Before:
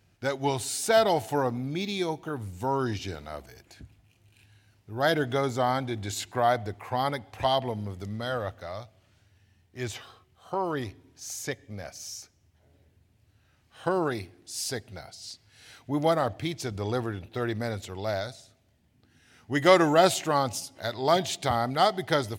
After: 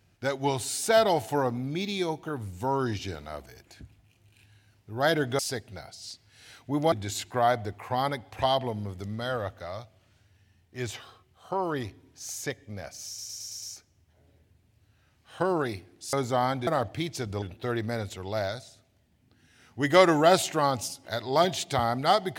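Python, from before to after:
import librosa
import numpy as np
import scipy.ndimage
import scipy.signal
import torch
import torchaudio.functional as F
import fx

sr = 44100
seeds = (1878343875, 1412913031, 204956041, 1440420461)

y = fx.edit(x, sr, fx.swap(start_s=5.39, length_s=0.54, other_s=14.59, other_length_s=1.53),
    fx.stutter(start_s=12.08, slice_s=0.11, count=6),
    fx.cut(start_s=16.87, length_s=0.27), tone=tone)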